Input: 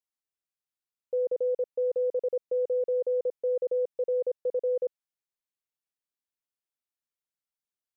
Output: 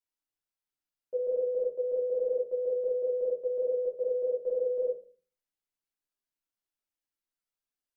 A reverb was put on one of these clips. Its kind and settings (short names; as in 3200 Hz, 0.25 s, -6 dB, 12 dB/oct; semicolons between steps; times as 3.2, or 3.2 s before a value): shoebox room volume 220 m³, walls furnished, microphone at 2.9 m; gain -6.5 dB